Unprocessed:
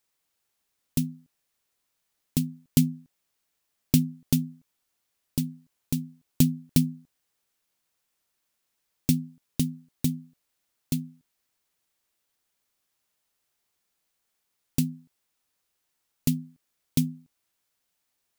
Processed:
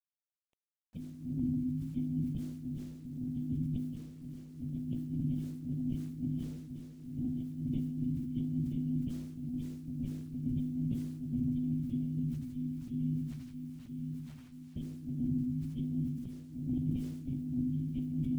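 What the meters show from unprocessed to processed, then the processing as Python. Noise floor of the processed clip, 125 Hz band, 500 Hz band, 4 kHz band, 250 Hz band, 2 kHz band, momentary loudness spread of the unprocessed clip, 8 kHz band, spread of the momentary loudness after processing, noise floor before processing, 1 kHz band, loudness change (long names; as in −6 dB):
−70 dBFS, −4.0 dB, −7.5 dB, below −20 dB, −3.5 dB, below −15 dB, 11 LU, below −25 dB, 10 LU, −79 dBFS, can't be measured, −8.5 dB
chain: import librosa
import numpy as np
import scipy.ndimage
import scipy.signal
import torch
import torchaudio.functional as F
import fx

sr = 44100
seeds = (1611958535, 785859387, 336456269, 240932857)

y = fx.partial_stretch(x, sr, pct=109)
y = fx.echo_feedback(y, sr, ms=980, feedback_pct=49, wet_db=-15.0)
y = fx.room_shoebox(y, sr, seeds[0], volume_m3=440.0, walls='mixed', distance_m=6.3)
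y = fx.cheby_harmonics(y, sr, harmonics=(2,), levels_db=(-18,), full_scale_db=-8.0)
y = fx.formant_cascade(y, sr, vowel='i')
y = fx.hpss(y, sr, part='harmonic', gain_db=-11)
y = fx.peak_eq(y, sr, hz=110.0, db=5.5, octaves=1.6)
y = fx.over_compress(y, sr, threshold_db=-44.0, ratio=-1.0)
y = fx.quant_dither(y, sr, seeds[1], bits=12, dither='none')
y = fx.sustainer(y, sr, db_per_s=42.0)
y = F.gain(torch.from_numpy(y), 3.5).numpy()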